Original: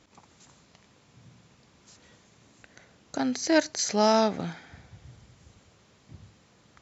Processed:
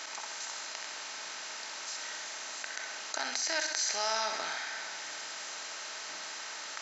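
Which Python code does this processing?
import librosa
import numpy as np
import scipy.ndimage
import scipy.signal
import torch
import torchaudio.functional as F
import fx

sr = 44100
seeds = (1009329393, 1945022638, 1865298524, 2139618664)

y = fx.bin_compress(x, sr, power=0.6)
y = scipy.signal.sosfilt(scipy.signal.butter(2, 1200.0, 'highpass', fs=sr, output='sos'), y)
y = fx.echo_feedback(y, sr, ms=64, feedback_pct=56, wet_db=-9.0)
y = fx.env_flatten(y, sr, amount_pct=50)
y = F.gain(torch.from_numpy(y), -6.0).numpy()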